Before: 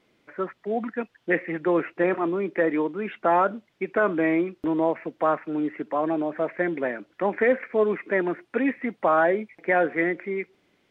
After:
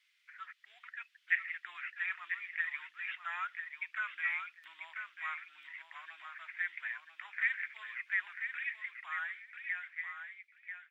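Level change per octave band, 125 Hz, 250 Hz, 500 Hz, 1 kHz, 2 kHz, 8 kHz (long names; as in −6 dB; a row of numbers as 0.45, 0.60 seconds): below −40 dB, below −40 dB, below −40 dB, −20.0 dB, −5.5 dB, can't be measured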